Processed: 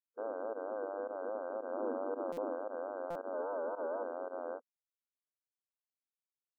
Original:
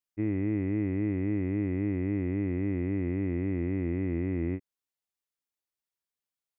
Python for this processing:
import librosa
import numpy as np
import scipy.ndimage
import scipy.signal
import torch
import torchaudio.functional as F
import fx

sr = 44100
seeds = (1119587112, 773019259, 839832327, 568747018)

y = fx.octave_divider(x, sr, octaves=1, level_db=0.0, at=(3.33, 4.03))
y = fx.spec_gate(y, sr, threshold_db=-20, keep='weak')
y = fx.peak_eq(y, sr, hz=290.0, db=14.0, octaves=0.68, at=(1.71, 2.55))
y = fx.clip_asym(y, sr, top_db=-48.0, bottom_db=-41.0)
y = fx.volume_shaper(y, sr, bpm=112, per_beat=1, depth_db=-19, release_ms=68.0, shape='fast start')
y = fx.vibrato(y, sr, rate_hz=4.6, depth_cents=95.0)
y = fx.brickwall_bandpass(y, sr, low_hz=230.0, high_hz=1600.0)
y = fx.buffer_glitch(y, sr, at_s=(2.32, 3.1), block=256, repeats=8)
y = y * librosa.db_to_amplitude(14.5)